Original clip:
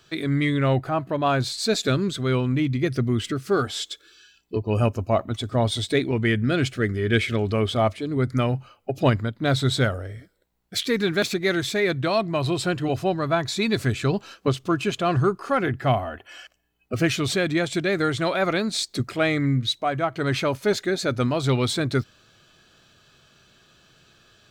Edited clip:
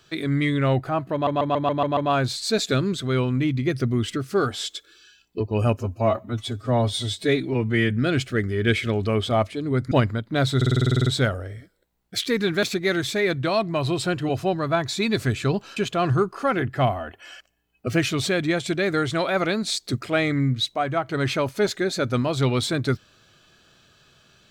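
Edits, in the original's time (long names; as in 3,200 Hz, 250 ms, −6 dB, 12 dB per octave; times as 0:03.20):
0:01.13: stutter 0.14 s, 7 plays
0:04.95–0:06.36: time-stretch 1.5×
0:08.37–0:09.01: remove
0:09.66: stutter 0.05 s, 11 plays
0:14.36–0:14.83: remove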